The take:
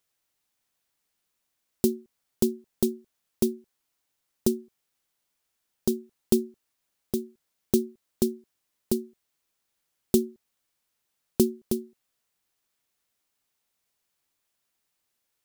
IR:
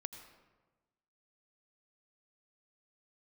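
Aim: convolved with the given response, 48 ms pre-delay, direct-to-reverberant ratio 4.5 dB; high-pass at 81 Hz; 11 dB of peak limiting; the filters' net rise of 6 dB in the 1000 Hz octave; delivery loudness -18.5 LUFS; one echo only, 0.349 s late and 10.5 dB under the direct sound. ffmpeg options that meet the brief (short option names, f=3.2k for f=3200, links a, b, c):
-filter_complex "[0:a]highpass=81,equalizer=f=1k:t=o:g=8,alimiter=limit=-17dB:level=0:latency=1,aecho=1:1:349:0.299,asplit=2[a][b];[1:a]atrim=start_sample=2205,adelay=48[c];[b][c]afir=irnorm=-1:irlink=0,volume=-2dB[d];[a][d]amix=inputs=2:normalize=0,volume=15dB"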